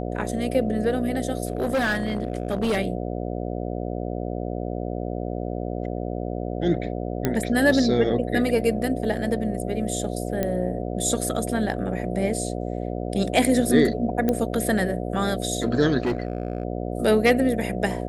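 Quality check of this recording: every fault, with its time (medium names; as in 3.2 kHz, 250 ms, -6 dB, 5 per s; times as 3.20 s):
buzz 60 Hz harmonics 12 -29 dBFS
1.45–2.78 s: clipped -19 dBFS
7.25 s: pop -8 dBFS
10.43 s: pop -11 dBFS
14.29 s: pop -10 dBFS
16.00–16.63 s: clipped -19.5 dBFS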